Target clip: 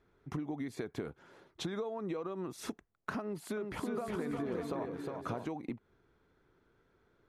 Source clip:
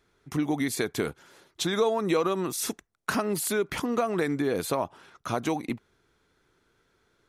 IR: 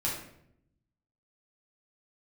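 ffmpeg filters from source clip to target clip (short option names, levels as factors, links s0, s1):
-filter_complex "[0:a]lowpass=f=1100:p=1,acompressor=threshold=0.0178:ratio=10,asettb=1/sr,asplit=3[s0][s1][s2];[s0]atrim=end=3.214[s3];[s1]atrim=start=3.21:end=5.46,asetpts=PTS-STARTPTS,afade=t=in:d=0.004:c=qsin,afade=t=out:st=2.246:d=0.004:c=qsin,aecho=1:1:360|594|746.1|845|909.2:0.631|0.398|0.251|0.158|0.1,atrim=end_sample=99225[s4];[s2]atrim=start=5.456[s5];[s3][s4]acrossfade=d=0.004:c1=hsin:c2=qsin[s6];[s6][s5]acrossfade=d=0.004:c1=qsin:c2=hsin"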